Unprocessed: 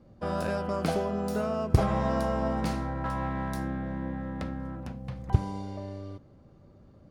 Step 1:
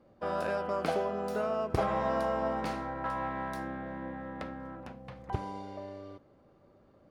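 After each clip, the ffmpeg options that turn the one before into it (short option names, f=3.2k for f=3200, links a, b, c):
-af "bass=f=250:g=-13,treble=f=4k:g=-8"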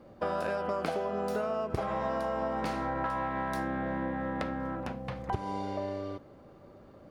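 -af "acompressor=threshold=-37dB:ratio=10,volume=8.5dB"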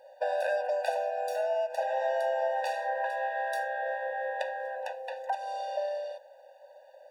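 -af "afftfilt=real='re*eq(mod(floor(b*sr/1024/490),2),1)':imag='im*eq(mod(floor(b*sr/1024/490),2),1)':win_size=1024:overlap=0.75,volume=5dB"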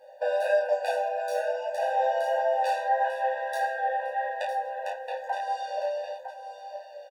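-filter_complex "[0:a]asplit=2[a][b];[b]aecho=0:1:956:0.316[c];[a][c]amix=inputs=2:normalize=0,flanger=delay=19.5:depth=2.8:speed=1.6,asplit=2[d][e];[e]aecho=0:1:10|33:0.668|0.562[f];[d][f]amix=inputs=2:normalize=0,volume=3dB"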